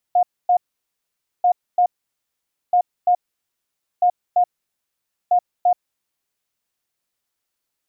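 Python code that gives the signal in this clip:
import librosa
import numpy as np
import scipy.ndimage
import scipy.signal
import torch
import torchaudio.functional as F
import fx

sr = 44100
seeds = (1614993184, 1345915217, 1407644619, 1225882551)

y = fx.beep_pattern(sr, wave='sine', hz=716.0, on_s=0.08, off_s=0.26, beeps=2, pause_s=0.87, groups=5, level_db=-11.5)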